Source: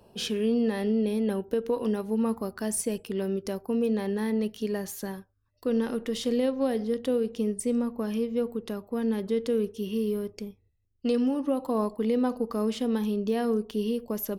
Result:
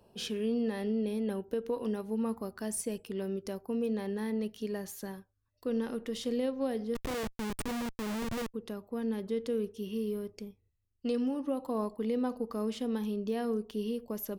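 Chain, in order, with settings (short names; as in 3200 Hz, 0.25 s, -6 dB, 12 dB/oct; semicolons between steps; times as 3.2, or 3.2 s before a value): 6.95–8.54 Schmitt trigger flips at -31 dBFS; gain -6 dB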